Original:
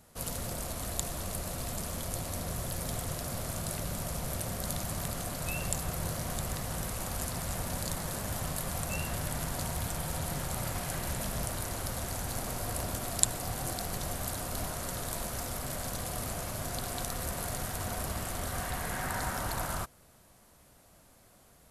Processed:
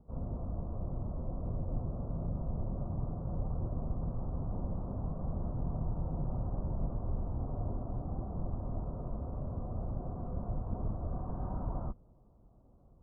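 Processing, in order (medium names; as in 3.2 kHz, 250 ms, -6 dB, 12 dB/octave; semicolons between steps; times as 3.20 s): octave divider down 2 oct, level 0 dB; plain phase-vocoder stretch 0.6×; steep low-pass 1.2 kHz 48 dB/octave; tilt shelf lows +8 dB, about 740 Hz; trim -4 dB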